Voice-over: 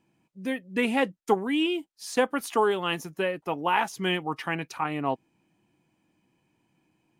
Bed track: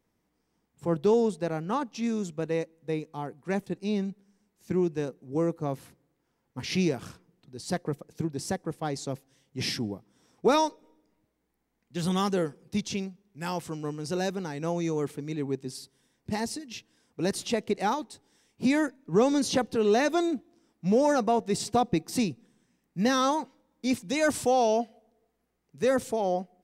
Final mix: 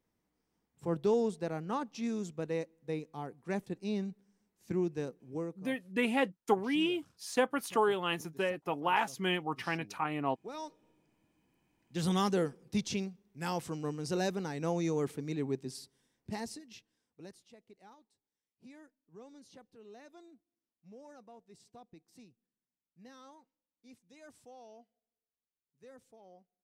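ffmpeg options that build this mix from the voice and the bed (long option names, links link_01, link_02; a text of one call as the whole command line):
ffmpeg -i stem1.wav -i stem2.wav -filter_complex "[0:a]adelay=5200,volume=-5dB[link_01];[1:a]volume=13.5dB,afade=type=out:start_time=5.19:duration=0.45:silence=0.149624,afade=type=in:start_time=10.53:duration=0.92:silence=0.105925,afade=type=out:start_time=15.34:duration=2.07:silence=0.0446684[link_02];[link_01][link_02]amix=inputs=2:normalize=0" out.wav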